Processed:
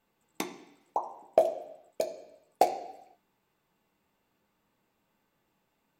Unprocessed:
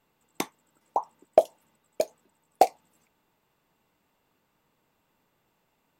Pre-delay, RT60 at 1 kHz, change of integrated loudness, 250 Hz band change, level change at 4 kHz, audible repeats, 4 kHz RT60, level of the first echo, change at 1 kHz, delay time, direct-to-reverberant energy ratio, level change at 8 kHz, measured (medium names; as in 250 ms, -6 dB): 3 ms, 0.80 s, -4.0 dB, -2.0 dB, -3.5 dB, no echo, 0.85 s, no echo, -4.0 dB, no echo, 4.5 dB, -4.0 dB